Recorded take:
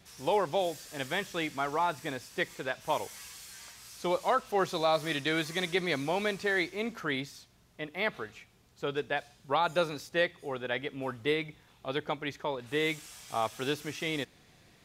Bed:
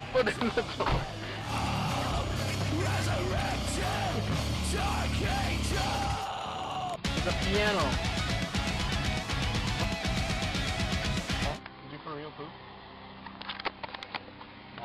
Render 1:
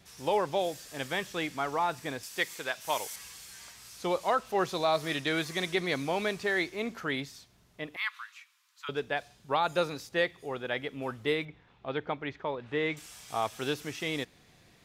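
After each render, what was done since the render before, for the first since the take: 2.23–3.16 tilt +2.5 dB/oct; 7.96–8.89 steep high-pass 980 Hz 72 dB/oct; 11.45–12.97 LPF 2800 Hz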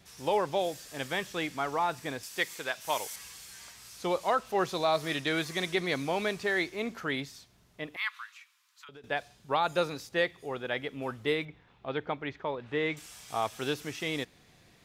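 8.3–9.04 compressor 12:1, threshold -46 dBFS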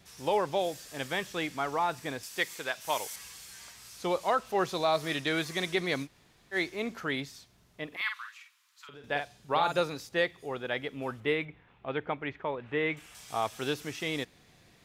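6.05–6.54 room tone, crossfade 0.06 s; 7.87–9.81 doubler 49 ms -5.5 dB; 11.2–13.15 resonant high shelf 3500 Hz -7 dB, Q 1.5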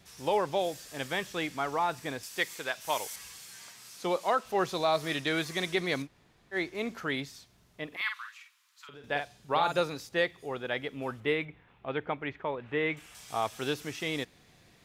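3.38–4.44 HPF 85 Hz -> 200 Hz 24 dB/oct; 6.02–6.75 high shelf 2800 Hz -7.5 dB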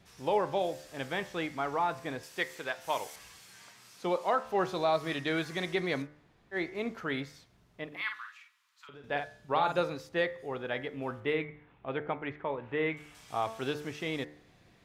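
high shelf 3700 Hz -10 dB; de-hum 74.48 Hz, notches 30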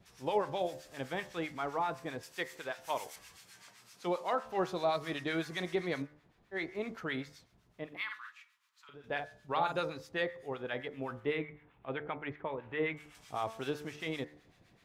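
harmonic tremolo 7.8 Hz, depth 70%, crossover 1000 Hz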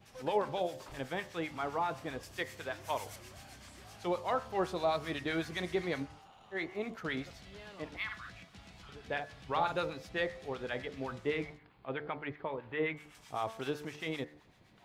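add bed -23.5 dB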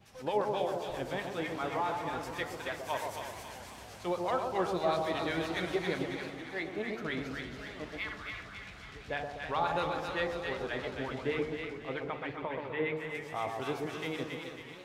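split-band echo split 1100 Hz, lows 0.126 s, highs 0.274 s, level -4 dB; warbling echo 0.329 s, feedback 57%, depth 144 cents, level -11.5 dB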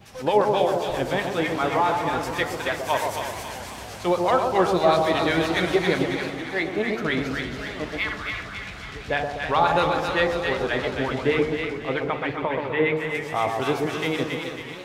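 gain +11.5 dB

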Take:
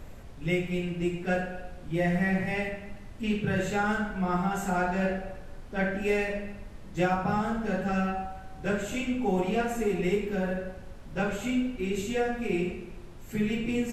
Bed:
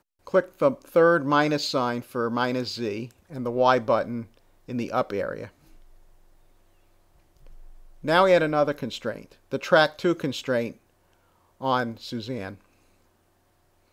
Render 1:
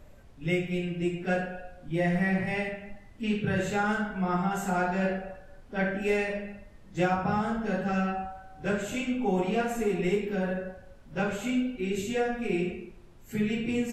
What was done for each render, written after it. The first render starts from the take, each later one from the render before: noise print and reduce 8 dB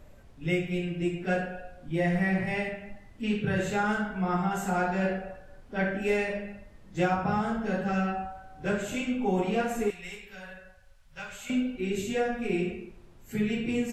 9.9–11.5 passive tone stack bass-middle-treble 10-0-10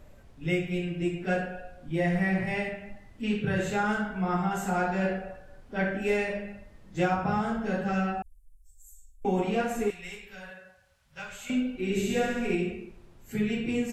8.22–9.25 inverse Chebyshev band-stop 180–2500 Hz, stop band 70 dB; 10.49–11.21 HPF 190 Hz -> 51 Hz; 11.72–12.55 flutter echo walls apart 11.6 m, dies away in 1.2 s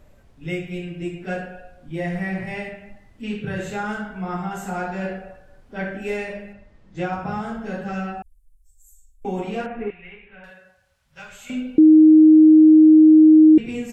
6.53–7.13 air absorption 71 m; 9.66–10.44 steep low-pass 2800 Hz; 11.78–13.58 bleep 312 Hz -6.5 dBFS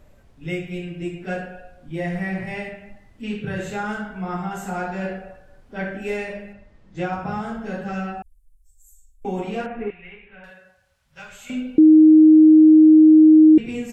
nothing audible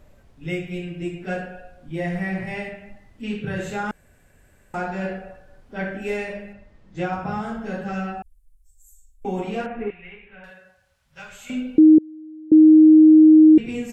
3.91–4.74 room tone; 11.98–12.52 flipped gate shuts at -18 dBFS, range -29 dB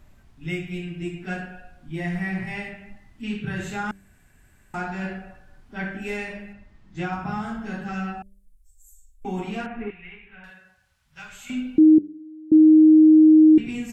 bell 520 Hz -13 dB 0.57 oct; de-hum 97.94 Hz, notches 6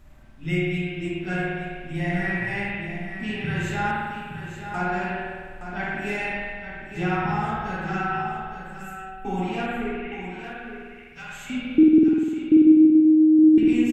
echo 0.869 s -9.5 dB; spring tank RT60 1.6 s, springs 50 ms, chirp 75 ms, DRR -3.5 dB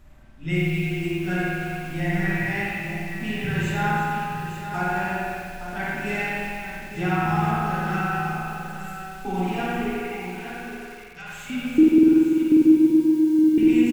on a send: echo 0.344 s -9.5 dB; on the sum: lo-fi delay 88 ms, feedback 55%, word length 7-bit, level -6 dB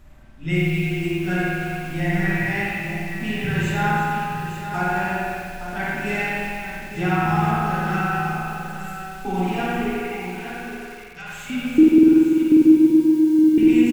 gain +2.5 dB

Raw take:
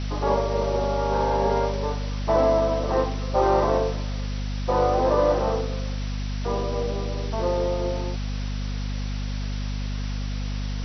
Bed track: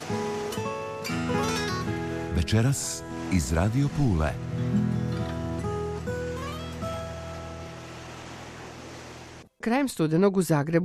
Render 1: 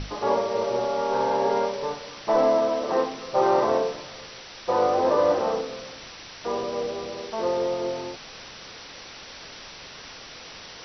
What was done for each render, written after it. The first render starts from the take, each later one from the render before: notches 50/100/150/200/250/300 Hz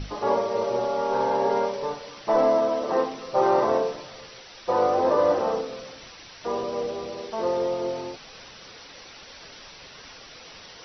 denoiser 6 dB, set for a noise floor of -43 dBFS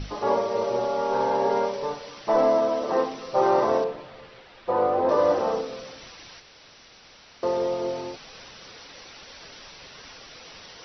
3.84–5.09 air absorption 280 m; 6.4–7.43 room tone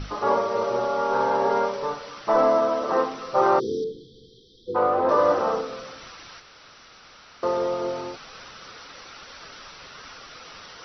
bell 1300 Hz +9.5 dB 0.5 oct; 3.59–4.75 spectral delete 500–3100 Hz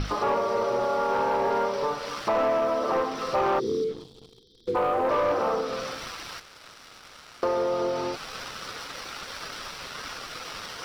sample leveller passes 2; compressor 2.5:1, threshold -27 dBFS, peak gain reduction 10 dB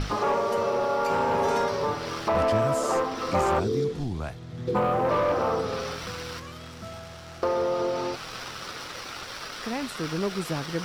add bed track -7.5 dB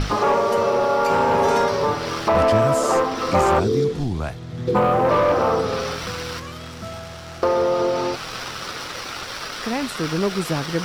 gain +6.5 dB

